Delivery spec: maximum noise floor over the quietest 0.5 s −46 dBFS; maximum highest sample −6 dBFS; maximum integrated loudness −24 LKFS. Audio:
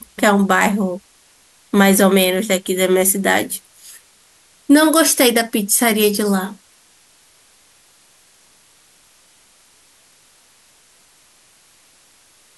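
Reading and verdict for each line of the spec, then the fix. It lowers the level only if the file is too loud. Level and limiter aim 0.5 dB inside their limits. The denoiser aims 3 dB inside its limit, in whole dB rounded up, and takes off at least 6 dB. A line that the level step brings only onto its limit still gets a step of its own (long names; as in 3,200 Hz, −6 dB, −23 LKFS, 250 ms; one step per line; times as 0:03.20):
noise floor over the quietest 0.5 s −53 dBFS: in spec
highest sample −2.0 dBFS: out of spec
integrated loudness −15.0 LKFS: out of spec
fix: level −9.5 dB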